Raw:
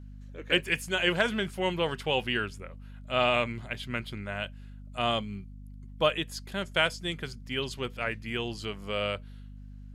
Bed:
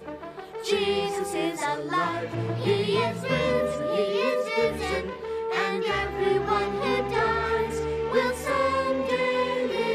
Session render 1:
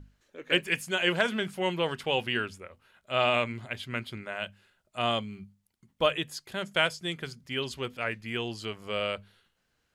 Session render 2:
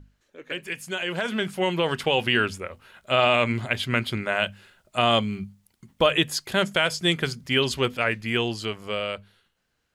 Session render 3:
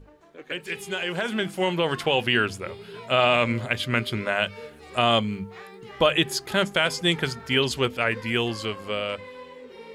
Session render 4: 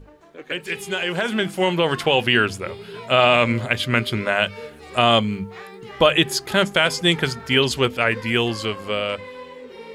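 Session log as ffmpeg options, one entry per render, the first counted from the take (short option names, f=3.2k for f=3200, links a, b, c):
-af "bandreject=f=50:t=h:w=6,bandreject=f=100:t=h:w=6,bandreject=f=150:t=h:w=6,bandreject=f=200:t=h:w=6,bandreject=f=250:t=h:w=6"
-af "alimiter=limit=-19.5dB:level=0:latency=1:release=112,dynaudnorm=f=210:g=17:m=11.5dB"
-filter_complex "[1:a]volume=-17dB[a];[0:a][a]amix=inputs=2:normalize=0"
-af "volume=4.5dB"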